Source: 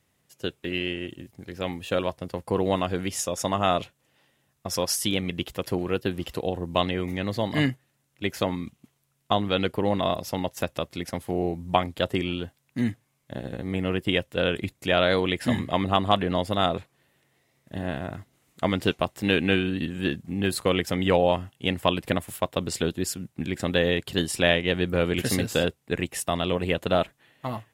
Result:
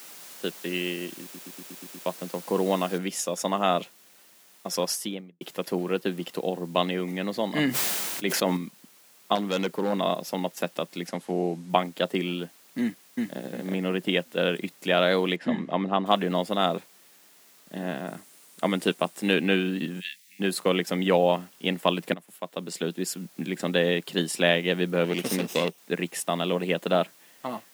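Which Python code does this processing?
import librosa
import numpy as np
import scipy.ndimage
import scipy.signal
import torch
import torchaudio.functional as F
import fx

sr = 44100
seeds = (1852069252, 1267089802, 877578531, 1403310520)

y = fx.noise_floor_step(x, sr, seeds[0], at_s=2.98, before_db=-44, after_db=-55, tilt_db=0.0)
y = fx.studio_fade_out(y, sr, start_s=4.84, length_s=0.57)
y = fx.sustainer(y, sr, db_per_s=23.0, at=(7.51, 8.57))
y = fx.overload_stage(y, sr, gain_db=20.0, at=(9.35, 9.93))
y = fx.lowpass(y, sr, hz=10000.0, slope=12, at=(11.07, 11.7))
y = fx.echo_throw(y, sr, start_s=12.81, length_s=0.57, ms=360, feedback_pct=25, wet_db=-1.5)
y = fx.spacing_loss(y, sr, db_at_10k=21, at=(15.36, 16.06))
y = fx.peak_eq(y, sr, hz=9200.0, db=7.0, octaves=0.61, at=(18.07, 19.34))
y = fx.ellip_highpass(y, sr, hz=1900.0, order=4, stop_db=40, at=(19.99, 20.39), fade=0.02)
y = fx.lower_of_two(y, sr, delay_ms=0.35, at=(25.04, 25.78))
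y = fx.edit(y, sr, fx.stutter_over(start_s=1.22, slice_s=0.12, count=7),
    fx.fade_in_from(start_s=22.14, length_s=1.01, floor_db=-17.0), tone=tone)
y = scipy.signal.sosfilt(scipy.signal.cheby1(4, 1.0, 170.0, 'highpass', fs=sr, output='sos'), y)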